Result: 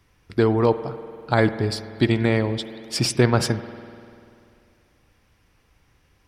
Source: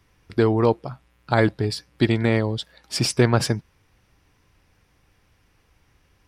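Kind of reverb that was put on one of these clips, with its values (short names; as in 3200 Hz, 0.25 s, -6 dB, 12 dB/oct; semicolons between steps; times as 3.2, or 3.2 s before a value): spring tank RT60 2.5 s, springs 49 ms, chirp 70 ms, DRR 12 dB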